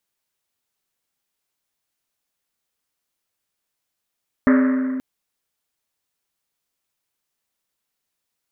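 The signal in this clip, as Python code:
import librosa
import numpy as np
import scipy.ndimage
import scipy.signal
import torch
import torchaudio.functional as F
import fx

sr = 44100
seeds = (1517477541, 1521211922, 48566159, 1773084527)

y = fx.risset_drum(sr, seeds[0], length_s=0.53, hz=260.0, decay_s=2.7, noise_hz=1500.0, noise_width_hz=920.0, noise_pct=15)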